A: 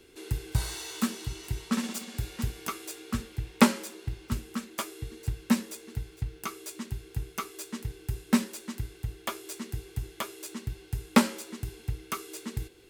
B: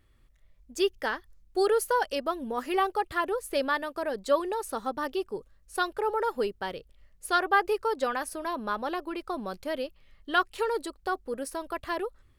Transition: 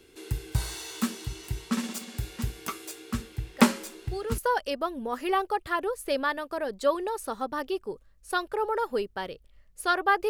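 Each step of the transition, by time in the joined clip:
A
3.49 s: add B from 0.94 s 0.89 s -10 dB
4.38 s: go over to B from 1.83 s

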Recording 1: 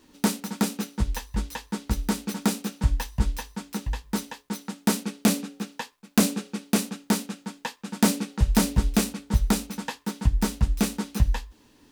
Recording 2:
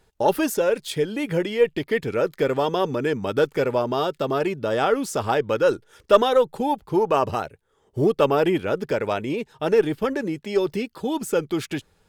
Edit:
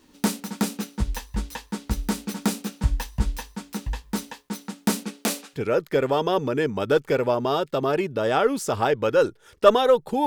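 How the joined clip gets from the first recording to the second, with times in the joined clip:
recording 1
5.04–5.59 s: high-pass 150 Hz -> 1.1 kHz
5.56 s: go over to recording 2 from 2.03 s, crossfade 0.06 s

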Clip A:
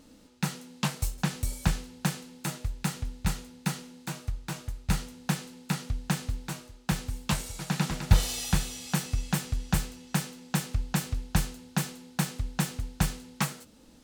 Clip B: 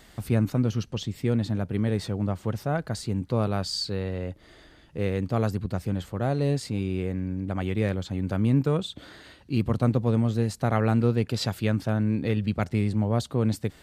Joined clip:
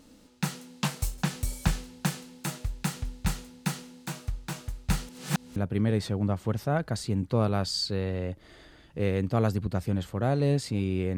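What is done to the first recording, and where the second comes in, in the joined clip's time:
clip A
5.09–5.56 s: reverse
5.56 s: go over to clip B from 1.55 s

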